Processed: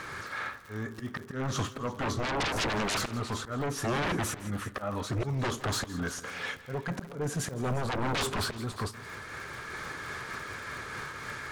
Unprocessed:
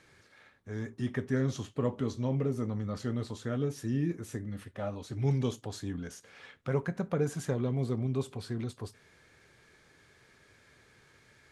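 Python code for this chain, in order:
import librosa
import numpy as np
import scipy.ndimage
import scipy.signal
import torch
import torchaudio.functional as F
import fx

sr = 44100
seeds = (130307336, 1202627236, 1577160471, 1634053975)

y = fx.peak_eq(x, sr, hz=1200.0, db=fx.steps((0.0, 12.5), (6.3, 2.5), (7.65, 11.5)), octaves=0.9)
y = fx.auto_swell(y, sr, attack_ms=790.0)
y = fx.dmg_crackle(y, sr, seeds[0], per_s=130.0, level_db=-58.0)
y = fx.fold_sine(y, sr, drive_db=16, ceiling_db=-24.0)
y = fx.echo_multitap(y, sr, ms=(164, 353), db=(-17.5, -17.0))
y = fx.am_noise(y, sr, seeds[1], hz=5.7, depth_pct=50)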